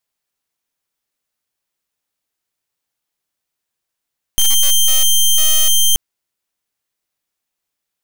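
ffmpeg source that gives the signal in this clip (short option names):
-f lavfi -i "aevalsrc='0.282*(2*lt(mod(3150*t,1),0.09)-1)':d=1.58:s=44100"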